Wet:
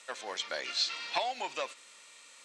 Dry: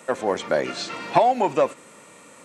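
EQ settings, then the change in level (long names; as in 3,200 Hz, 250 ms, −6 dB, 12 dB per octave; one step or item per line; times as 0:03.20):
resonant band-pass 4,200 Hz, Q 1.6
+3.0 dB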